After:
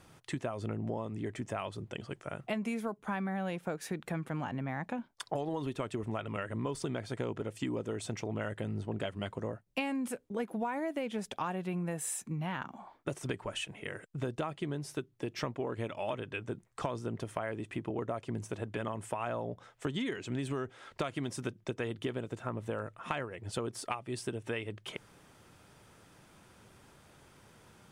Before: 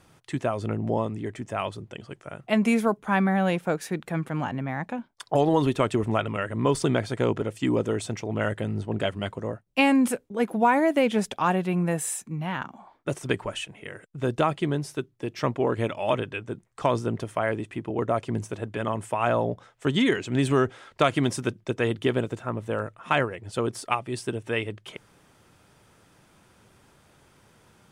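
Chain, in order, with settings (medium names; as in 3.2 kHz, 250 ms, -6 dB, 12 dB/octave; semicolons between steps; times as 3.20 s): compression 6:1, threshold -32 dBFS, peak gain reduction 15.5 dB; trim -1 dB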